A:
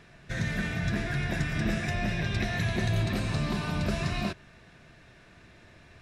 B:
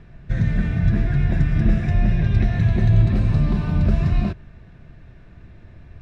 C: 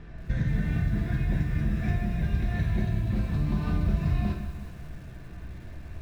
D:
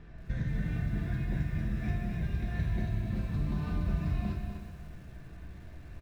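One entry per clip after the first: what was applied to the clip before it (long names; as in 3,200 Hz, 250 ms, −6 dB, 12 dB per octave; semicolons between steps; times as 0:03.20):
RIAA equalisation playback
downward compressor 20 to 1, threshold −23 dBFS, peak gain reduction 14 dB; convolution reverb, pre-delay 3 ms, DRR 1.5 dB; feedback echo at a low word length 182 ms, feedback 55%, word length 8 bits, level −12 dB
single-tap delay 251 ms −8 dB; level −6 dB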